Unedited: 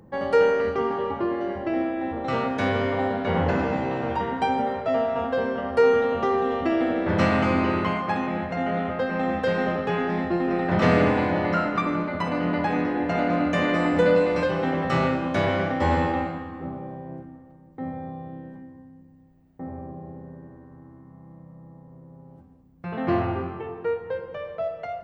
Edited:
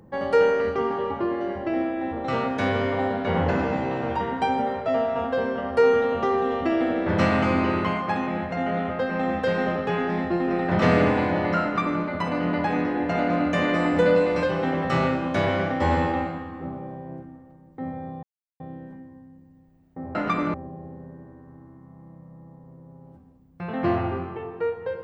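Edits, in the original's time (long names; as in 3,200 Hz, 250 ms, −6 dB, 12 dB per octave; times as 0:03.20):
0:11.63–0:12.02: duplicate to 0:19.78
0:18.23: splice in silence 0.37 s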